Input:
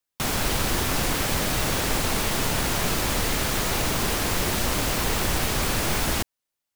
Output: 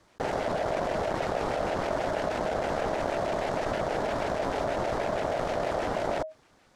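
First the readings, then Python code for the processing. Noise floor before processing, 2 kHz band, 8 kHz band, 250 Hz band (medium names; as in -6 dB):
-85 dBFS, -8.0 dB, -21.5 dB, -6.0 dB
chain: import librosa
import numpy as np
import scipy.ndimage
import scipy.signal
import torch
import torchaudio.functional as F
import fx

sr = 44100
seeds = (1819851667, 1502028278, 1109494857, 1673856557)

y = fx.peak_eq(x, sr, hz=3400.0, db=-5.5, octaves=1.3)
y = fx.cheby_harmonics(y, sr, harmonics=(8,), levels_db=(-21,), full_scale_db=-11.5)
y = fx.filter_lfo_notch(y, sr, shape='square', hz=6.3, low_hz=480.0, high_hz=2000.0, q=1.0)
y = y * np.sin(2.0 * np.pi * 630.0 * np.arange(len(y)) / sr)
y = fx.spacing_loss(y, sr, db_at_10k=28)
y = fx.env_flatten(y, sr, amount_pct=70)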